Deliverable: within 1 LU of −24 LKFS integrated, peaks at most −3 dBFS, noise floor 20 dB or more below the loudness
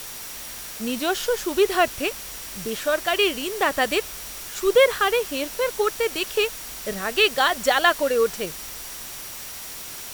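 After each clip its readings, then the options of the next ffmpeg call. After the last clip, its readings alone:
interfering tone 5,700 Hz; level of the tone −46 dBFS; background noise floor −36 dBFS; target noise floor −44 dBFS; integrated loudness −23.5 LKFS; sample peak −4.5 dBFS; target loudness −24.0 LKFS
→ -af "bandreject=frequency=5700:width=30"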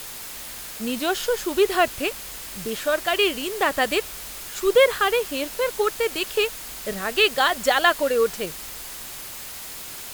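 interfering tone none found; background noise floor −37 dBFS; target noise floor −43 dBFS
→ -af "afftdn=noise_reduction=6:noise_floor=-37"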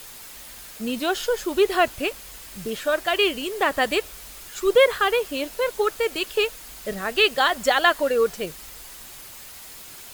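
background noise floor −42 dBFS; target noise floor −43 dBFS
→ -af "afftdn=noise_reduction=6:noise_floor=-42"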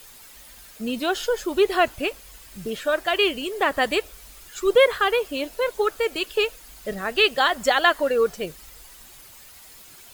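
background noise floor −47 dBFS; integrated loudness −22.5 LKFS; sample peak −4.5 dBFS; target loudness −24.0 LKFS
→ -af "volume=-1.5dB"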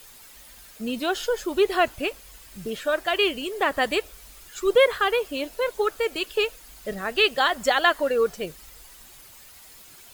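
integrated loudness −24.0 LKFS; sample peak −6.0 dBFS; background noise floor −48 dBFS

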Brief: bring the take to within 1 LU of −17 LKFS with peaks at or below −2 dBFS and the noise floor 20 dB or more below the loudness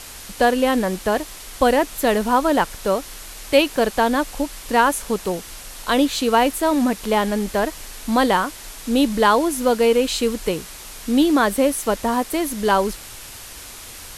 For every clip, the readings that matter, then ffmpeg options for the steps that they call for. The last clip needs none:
background noise floor −38 dBFS; target noise floor −40 dBFS; integrated loudness −19.5 LKFS; sample peak −2.5 dBFS; target loudness −17.0 LKFS
→ -af "afftdn=noise_reduction=6:noise_floor=-38"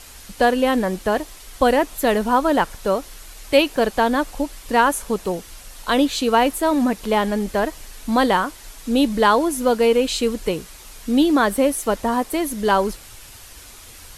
background noise floor −42 dBFS; integrated loudness −20.0 LKFS; sample peak −2.5 dBFS; target loudness −17.0 LKFS
→ -af "volume=3dB,alimiter=limit=-2dB:level=0:latency=1"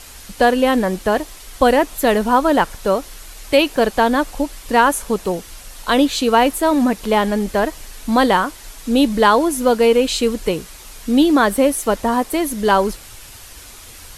integrated loudness −17.0 LKFS; sample peak −2.0 dBFS; background noise floor −39 dBFS

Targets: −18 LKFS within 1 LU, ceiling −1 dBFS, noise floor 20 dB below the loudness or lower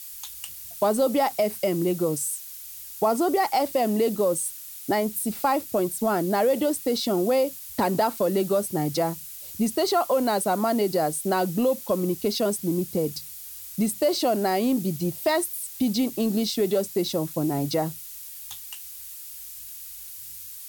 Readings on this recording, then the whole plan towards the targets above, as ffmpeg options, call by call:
background noise floor −40 dBFS; target noise floor −45 dBFS; integrated loudness −25.0 LKFS; sample peak −11.0 dBFS; target loudness −18.0 LKFS
→ -af "afftdn=noise_reduction=6:noise_floor=-40"
-af "volume=7dB"

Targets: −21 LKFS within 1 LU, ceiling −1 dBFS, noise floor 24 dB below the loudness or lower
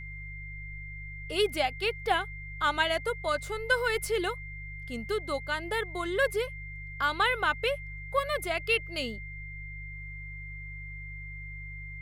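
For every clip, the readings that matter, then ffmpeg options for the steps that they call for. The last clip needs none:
mains hum 50 Hz; hum harmonics up to 150 Hz; level of the hum −40 dBFS; interfering tone 2,100 Hz; level of the tone −42 dBFS; integrated loudness −31.5 LKFS; sample peak −12.5 dBFS; target loudness −21.0 LKFS
→ -af "bandreject=frequency=50:width_type=h:width=4,bandreject=frequency=100:width_type=h:width=4,bandreject=frequency=150:width_type=h:width=4"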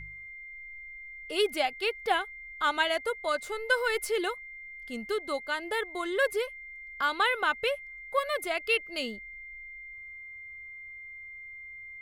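mains hum none found; interfering tone 2,100 Hz; level of the tone −42 dBFS
→ -af "bandreject=frequency=2100:width=30"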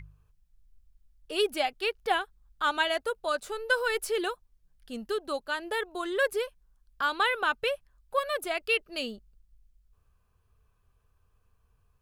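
interfering tone none found; integrated loudness −30.0 LKFS; sample peak −13.0 dBFS; target loudness −21.0 LKFS
→ -af "volume=9dB"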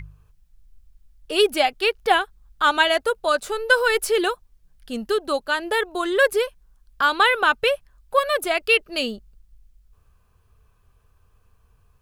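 integrated loudness −21.0 LKFS; sample peak −4.0 dBFS; background noise floor −61 dBFS

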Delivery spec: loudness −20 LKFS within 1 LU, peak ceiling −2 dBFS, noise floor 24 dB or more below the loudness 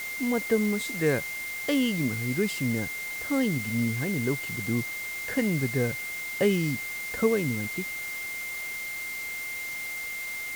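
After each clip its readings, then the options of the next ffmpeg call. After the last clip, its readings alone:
interfering tone 2,100 Hz; level of the tone −33 dBFS; background noise floor −35 dBFS; target noise floor −53 dBFS; integrated loudness −28.5 LKFS; sample peak −11.5 dBFS; target loudness −20.0 LKFS
→ -af "bandreject=frequency=2100:width=30"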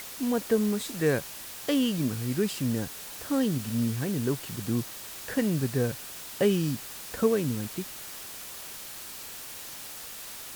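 interfering tone none found; background noise floor −42 dBFS; target noise floor −54 dBFS
→ -af "afftdn=noise_reduction=12:noise_floor=-42"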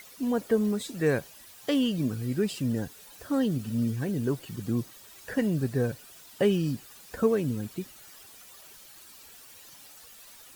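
background noise floor −51 dBFS; target noise floor −53 dBFS
→ -af "afftdn=noise_reduction=6:noise_floor=-51"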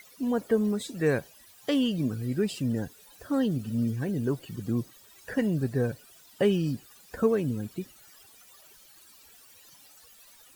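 background noise floor −55 dBFS; integrated loudness −29.0 LKFS; sample peak −12.0 dBFS; target loudness −20.0 LKFS
→ -af "volume=9dB"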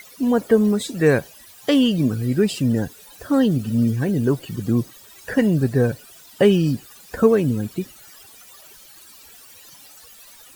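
integrated loudness −20.0 LKFS; sample peak −3.0 dBFS; background noise floor −46 dBFS

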